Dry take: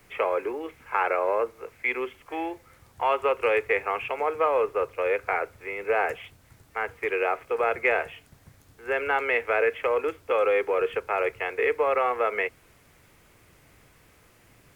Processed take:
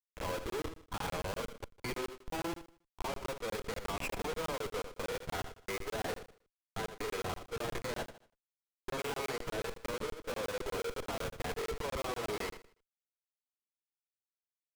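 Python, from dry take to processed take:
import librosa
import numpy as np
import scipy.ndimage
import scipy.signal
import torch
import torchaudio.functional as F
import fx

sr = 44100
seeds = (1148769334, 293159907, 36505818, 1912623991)

p1 = fx.tracing_dist(x, sr, depth_ms=0.19)
p2 = scipy.signal.sosfilt(scipy.signal.butter(2, 150.0, 'highpass', fs=sr, output='sos'), p1)
p3 = fx.level_steps(p2, sr, step_db=18)
p4 = fx.schmitt(p3, sr, flips_db=-41.0)
p5 = fx.granulator(p4, sr, seeds[0], grain_ms=100.0, per_s=20.0, spray_ms=20.0, spread_st=0)
p6 = fx.small_body(p5, sr, hz=(1000.0, 3300.0), ring_ms=45, db=6)
p7 = p6 + fx.echo_feedback(p6, sr, ms=78, feedback_pct=33, wet_db=-10.5, dry=0)
p8 = fx.buffer_crackle(p7, sr, first_s=0.5, period_s=0.12, block=1024, kind='zero')
y = p8 * librosa.db_to_amplitude(3.5)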